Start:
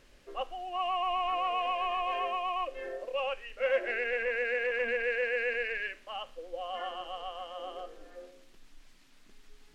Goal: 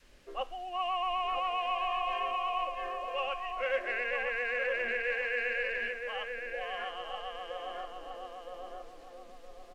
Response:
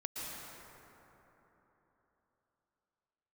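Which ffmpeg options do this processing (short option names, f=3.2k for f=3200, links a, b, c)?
-filter_complex "[0:a]asplit=2[a][b];[b]adelay=966,lowpass=f=1.5k:p=1,volume=-3.5dB,asplit=2[c][d];[d]adelay=966,lowpass=f=1.5k:p=1,volume=0.38,asplit=2[e][f];[f]adelay=966,lowpass=f=1.5k:p=1,volume=0.38,asplit=2[g][h];[h]adelay=966,lowpass=f=1.5k:p=1,volume=0.38,asplit=2[i][j];[j]adelay=966,lowpass=f=1.5k:p=1,volume=0.38[k];[a][c][e][g][i][k]amix=inputs=6:normalize=0,adynamicequalizer=threshold=0.00562:dfrequency=360:dqfactor=0.78:tfrequency=360:tqfactor=0.78:attack=5:release=100:ratio=0.375:range=3.5:mode=cutabove:tftype=bell"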